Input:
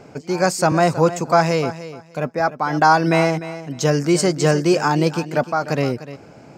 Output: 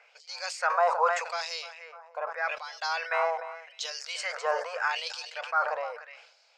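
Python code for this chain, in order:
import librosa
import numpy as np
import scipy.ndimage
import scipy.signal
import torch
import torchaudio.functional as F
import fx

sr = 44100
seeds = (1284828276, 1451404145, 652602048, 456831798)

y = fx.brickwall_bandpass(x, sr, low_hz=450.0, high_hz=12000.0)
y = fx.filter_lfo_bandpass(y, sr, shape='sine', hz=0.82, low_hz=930.0, high_hz=4300.0, q=2.7)
y = fx.sustainer(y, sr, db_per_s=76.0)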